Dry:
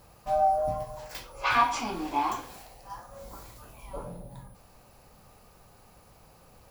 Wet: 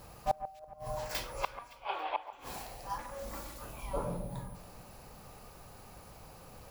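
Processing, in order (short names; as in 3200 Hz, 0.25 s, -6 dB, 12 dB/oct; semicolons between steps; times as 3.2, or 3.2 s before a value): 2.98–3.62 minimum comb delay 3.5 ms; flipped gate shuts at -21 dBFS, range -32 dB; 1.72–2.33 elliptic band-pass 530–3400 Hz, stop band 40 dB; echo with dull and thin repeats by turns 0.14 s, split 2000 Hz, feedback 64%, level -12 dB; gain +3.5 dB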